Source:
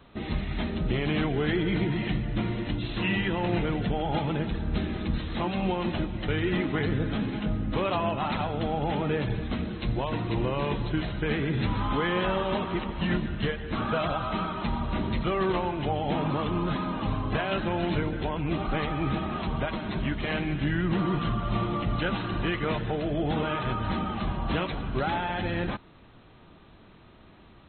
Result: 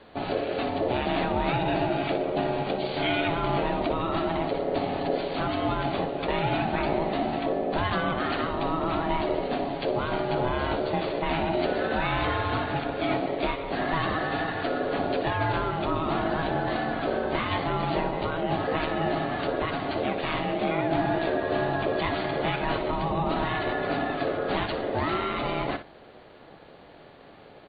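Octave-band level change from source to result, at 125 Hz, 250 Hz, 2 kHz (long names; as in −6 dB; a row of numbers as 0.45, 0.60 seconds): −4.0, −1.0, +2.5 decibels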